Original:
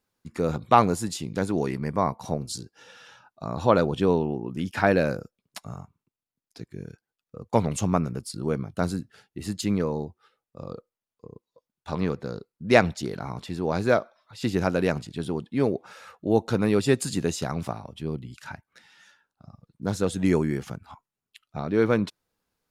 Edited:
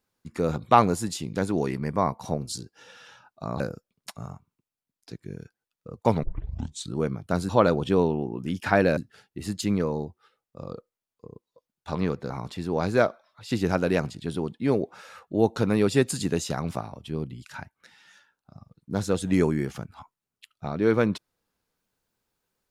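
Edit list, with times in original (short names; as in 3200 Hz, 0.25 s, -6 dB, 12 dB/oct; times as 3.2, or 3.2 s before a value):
3.6–5.08 move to 8.97
7.71 tape start 0.70 s
12.3–13.22 cut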